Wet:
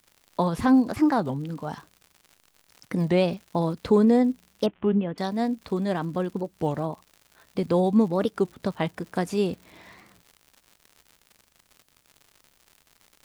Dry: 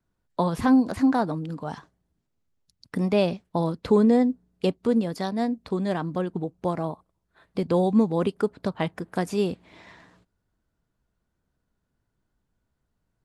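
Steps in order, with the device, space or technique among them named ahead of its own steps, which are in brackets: warped LP (record warp 33 1/3 rpm, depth 250 cents; crackle 120/s -39 dBFS; white noise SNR 44 dB); 4.66–5.18 elliptic low-pass 3100 Hz, stop band 40 dB

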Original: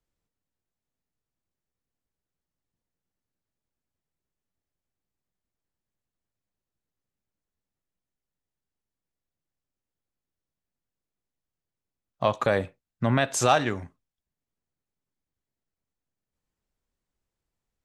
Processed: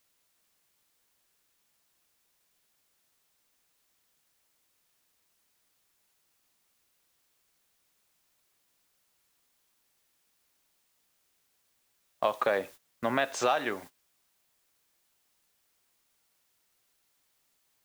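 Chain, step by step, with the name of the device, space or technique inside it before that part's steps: baby monitor (BPF 360–4100 Hz; compressor 6:1, threshold -22 dBFS, peak gain reduction 7.5 dB; white noise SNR 16 dB; gate -46 dBFS, range -17 dB)

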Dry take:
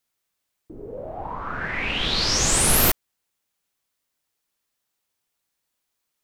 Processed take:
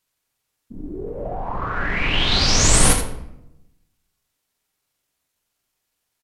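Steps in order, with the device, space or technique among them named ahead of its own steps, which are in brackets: monster voice (pitch shift -5.5 st; low shelf 160 Hz +5 dB; echo 79 ms -9 dB; reverb RT60 0.90 s, pre-delay 3 ms, DRR 6 dB); gain +1.5 dB

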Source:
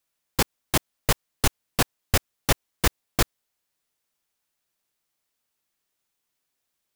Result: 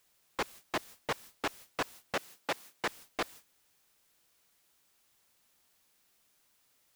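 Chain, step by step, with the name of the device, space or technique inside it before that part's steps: aircraft radio (BPF 360–2300 Hz; hard clip -28.5 dBFS, distortion -6 dB; white noise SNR 11 dB; gate -50 dBFS, range -17 dB); 2.15–2.86 HPF 140 Hz 12 dB/oct

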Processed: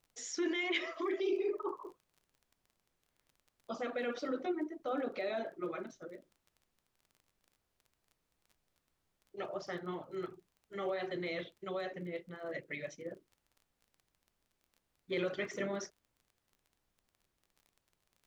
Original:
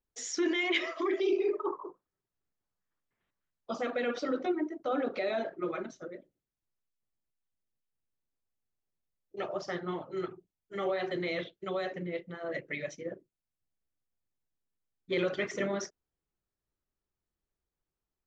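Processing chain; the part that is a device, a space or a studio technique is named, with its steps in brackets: vinyl LP (crackle 23/s -46 dBFS; pink noise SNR 41 dB); gain -5 dB

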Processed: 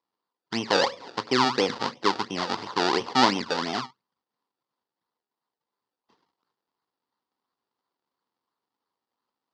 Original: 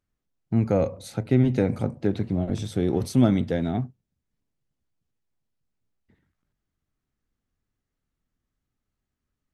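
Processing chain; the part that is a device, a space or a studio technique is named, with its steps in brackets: circuit-bent sampling toy (decimation with a swept rate 29×, swing 100% 2.9 Hz; speaker cabinet 500–5200 Hz, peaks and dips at 620 Hz -8 dB, 1000 Hz +7 dB, 1600 Hz -4 dB, 2400 Hz -7 dB, 4700 Hz +7 dB); gain +6 dB

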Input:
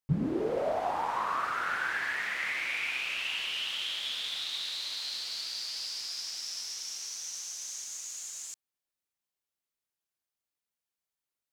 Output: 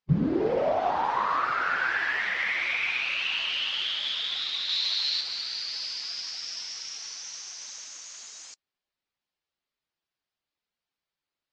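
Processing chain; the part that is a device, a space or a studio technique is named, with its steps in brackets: clip after many re-uploads (LPF 5300 Hz 24 dB/oct; bin magnitudes rounded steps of 15 dB); 4.69–5.21 bell 4100 Hz +5 dB 1.7 oct; gain +5.5 dB

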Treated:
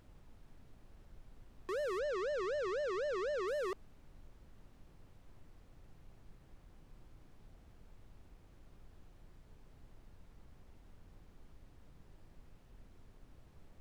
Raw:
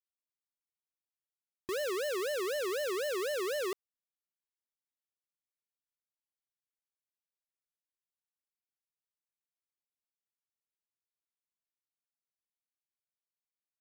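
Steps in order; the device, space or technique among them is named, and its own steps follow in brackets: aircraft cabin announcement (BPF 480–4100 Hz; soft clip -36.5 dBFS, distortion -10 dB; brown noise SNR 11 dB); 1.99–3.48 LPF 7100 Hz 24 dB/oct; gain +4.5 dB

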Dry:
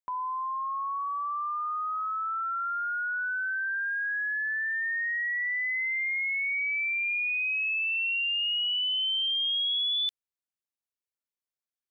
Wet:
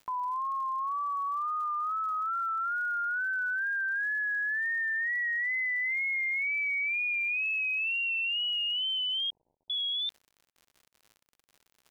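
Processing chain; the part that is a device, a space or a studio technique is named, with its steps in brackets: lo-fi chain (LPF 3200 Hz; wow and flutter; crackle 81/s -46 dBFS); 9.3–9.7 steep low-pass 940 Hz 96 dB/oct

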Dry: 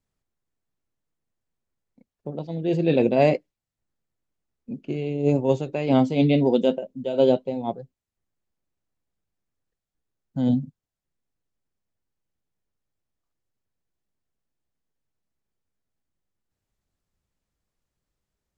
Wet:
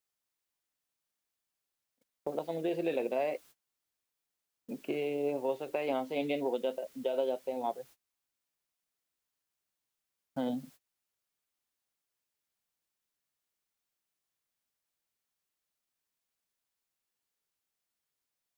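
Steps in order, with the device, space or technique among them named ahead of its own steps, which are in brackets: baby monitor (BPF 500–3000 Hz; compressor 6:1, threshold -35 dBFS, peak gain reduction 18 dB; white noise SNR 23 dB; gate -59 dBFS, range -25 dB); gain +5 dB

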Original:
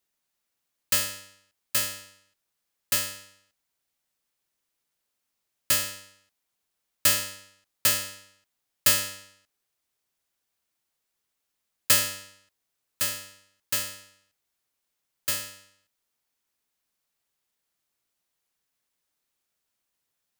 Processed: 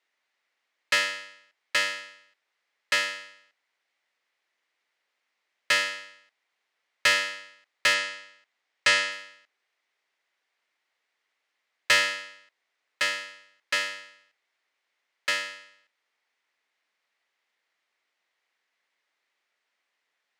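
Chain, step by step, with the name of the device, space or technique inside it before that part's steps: intercom (BPF 450–3800 Hz; bell 2000 Hz +8 dB 0.46 oct; soft clip -18 dBFS, distortion -17 dB); 7.94–9.12 LPF 9700 Hz 24 dB/oct; gain +6.5 dB

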